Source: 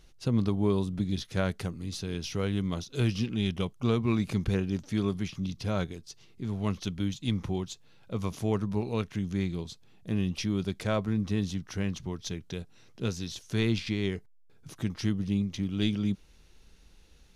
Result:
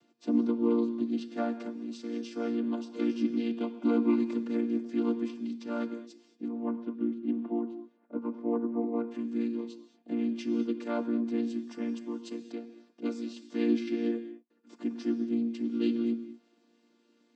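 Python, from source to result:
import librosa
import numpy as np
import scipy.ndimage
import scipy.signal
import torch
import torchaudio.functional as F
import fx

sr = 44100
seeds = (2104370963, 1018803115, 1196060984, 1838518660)

y = fx.chord_vocoder(x, sr, chord='major triad', root=58)
y = fx.lowpass(y, sr, hz=1300.0, slope=12, at=(6.48, 9.08))
y = fx.rev_gated(y, sr, seeds[0], gate_ms=250, shape='flat', drr_db=10.0)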